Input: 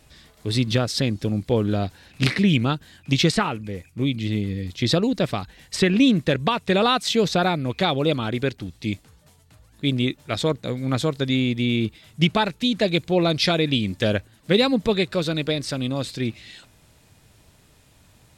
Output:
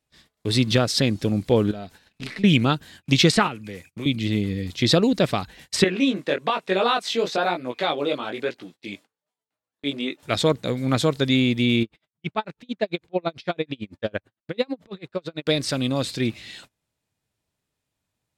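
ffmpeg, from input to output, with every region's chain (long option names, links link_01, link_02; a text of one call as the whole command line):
ffmpeg -i in.wav -filter_complex "[0:a]asettb=1/sr,asplit=3[link_01][link_02][link_03];[link_01]atrim=end=1.714[link_04];[link_02]atrim=start=1.71:end=2.44,asetpts=PTS-STARTPTS,afade=type=in:duration=0.004:curve=qsin,afade=type=out:start_time=0.726:duration=0.004:curve=qsin,aeval=exprs='if(lt(val(0),0),0.708*val(0),val(0))':channel_layout=same,aecho=1:1:4.6:0.32,atrim=end_sample=32193,acompressor=threshold=-43dB:ratio=2:attack=3.2:release=140:knee=1:detection=peak[link_05];[link_03]atrim=start=2.436[link_06];[link_04][link_05]acrossfade=duration=0.004:curve1=hsin:curve2=qsin[link_07];[link_07][link_06]acrossfade=duration=0.004:curve1=qsin:curve2=hsin,asettb=1/sr,asplit=3[link_08][link_09][link_10];[link_08]atrim=end=3.474[link_11];[link_09]atrim=start=3.47:end=4.06,asetpts=PTS-STARTPTS,afade=type=in:duration=0.004:curve=qsin,afade=type=out:start_time=0.586:duration=0.004:curve=qsin,highpass=82,acrossover=split=380|1000[link_12][link_13][link_14];[link_12]acompressor=threshold=-36dB:ratio=4[link_15];[link_13]acompressor=threshold=-45dB:ratio=4[link_16];[link_14]acompressor=threshold=-36dB:ratio=4[link_17];[link_15][link_16][link_17]amix=inputs=3:normalize=0[link_18];[link_10]atrim=start=4.056[link_19];[link_11][link_18]acrossfade=duration=0.004:curve1=hsin:curve2=qsin[link_20];[link_20][link_19]acrossfade=duration=0.004:curve1=qsin:curve2=hsin,asettb=1/sr,asplit=3[link_21][link_22][link_23];[link_21]atrim=end=5.844[link_24];[link_22]atrim=start=5.84:end=10.23,asetpts=PTS-STARTPTS,afade=type=in:duration=0.004:curve=qsin,afade=type=out:start_time=4.386:duration=0.004:curve=qsin,highpass=330,highshelf=frequency=3900:gain=-7.5,flanger=delay=16:depth=5.3:speed=1.1[link_25];[link_23]atrim=start=10.226[link_26];[link_24][link_25]acrossfade=duration=0.004:curve1=hsin:curve2=qsin[link_27];[link_27][link_26]acrossfade=duration=0.004:curve1=qsin:curve2=hsin,asettb=1/sr,asplit=3[link_28][link_29][link_30];[link_28]atrim=end=11.834[link_31];[link_29]atrim=start=11.83:end=15.47,asetpts=PTS-STARTPTS,afade=type=in:duration=0.004:curve=qsin,afade=type=out:start_time=3.636:duration=0.004:curve=qsin,lowpass=frequency=1400:poles=1,lowshelf=frequency=370:gain=-7,aeval=exprs='val(0)*pow(10,-37*(0.5-0.5*cos(2*PI*9*n/s))/20)':channel_layout=same[link_32];[link_30]atrim=start=15.466[link_33];[link_31][link_32]acrossfade=duration=0.004:curve1=hsin:curve2=qsin[link_34];[link_34][link_33]acrossfade=duration=0.004:curve1=qsin:curve2=hsin,lowshelf=frequency=90:gain=-8.5,agate=range=-27dB:threshold=-48dB:ratio=16:detection=peak,volume=3dB" out.wav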